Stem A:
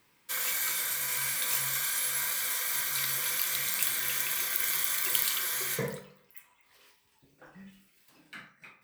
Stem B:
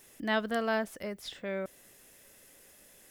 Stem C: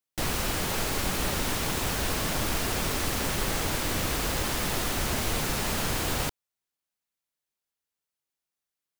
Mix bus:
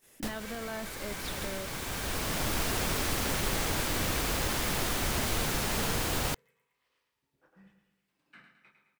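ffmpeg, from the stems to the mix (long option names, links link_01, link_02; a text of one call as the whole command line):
ffmpeg -i stem1.wav -i stem2.wav -i stem3.wav -filter_complex "[0:a]aemphasis=mode=reproduction:type=50fm,aeval=exprs='(mod(12.6*val(0)+1,2)-1)/12.6':channel_layout=same,volume=-8.5dB,asplit=2[link_01][link_02];[link_02]volume=-7.5dB[link_03];[1:a]volume=-1.5dB,asplit=2[link_04][link_05];[2:a]adelay=50,volume=-2dB[link_06];[link_05]apad=whole_len=398746[link_07];[link_06][link_07]sidechaincompress=threshold=-38dB:ratio=12:attack=5.5:release=1360[link_08];[link_01][link_04]amix=inputs=2:normalize=0,agate=range=-13dB:threshold=-60dB:ratio=16:detection=peak,alimiter=level_in=6.5dB:limit=-24dB:level=0:latency=1,volume=-6.5dB,volume=0dB[link_09];[link_03]aecho=0:1:111|222|333|444|555|666|777:1|0.49|0.24|0.118|0.0576|0.0282|0.0138[link_10];[link_08][link_09][link_10]amix=inputs=3:normalize=0" out.wav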